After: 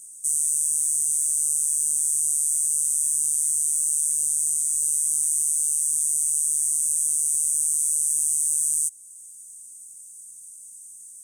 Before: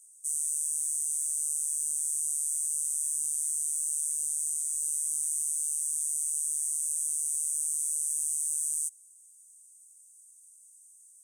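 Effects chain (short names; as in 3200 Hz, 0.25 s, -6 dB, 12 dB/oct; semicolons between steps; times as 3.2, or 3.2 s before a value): resonant low shelf 330 Hz +12 dB, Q 3; in parallel at 0 dB: compressor, threshold -43 dBFS, peak gain reduction 16 dB; on the sum: gain +6.5 dB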